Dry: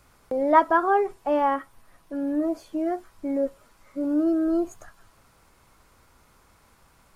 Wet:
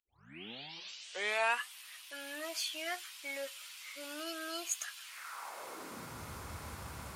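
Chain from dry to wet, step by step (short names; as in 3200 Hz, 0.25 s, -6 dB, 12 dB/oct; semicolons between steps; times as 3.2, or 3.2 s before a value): tape start at the beginning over 1.78 s; high-pass sweep 2900 Hz -> 80 Hz, 5.03–6.3; gain +12.5 dB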